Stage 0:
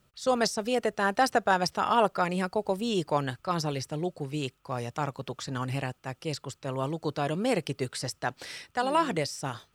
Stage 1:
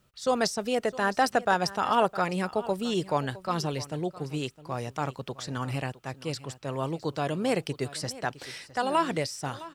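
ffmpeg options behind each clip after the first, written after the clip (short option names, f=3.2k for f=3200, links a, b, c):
-af "aecho=1:1:661:0.133"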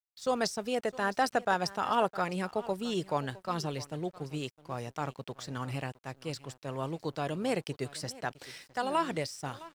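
-af "aeval=exprs='sgn(val(0))*max(abs(val(0))-0.00237,0)':c=same,volume=-4dB"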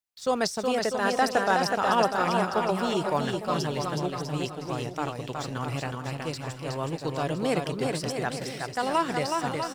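-af "aecho=1:1:370|647.5|855.6|1012|1129:0.631|0.398|0.251|0.158|0.1,volume=4dB"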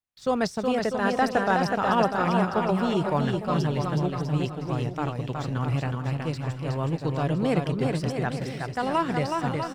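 -af "bass=f=250:g=8,treble=f=4k:g=-8"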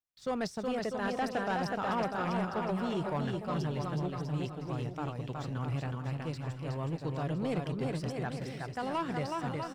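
-af "asoftclip=type=tanh:threshold=-18dB,volume=-7dB"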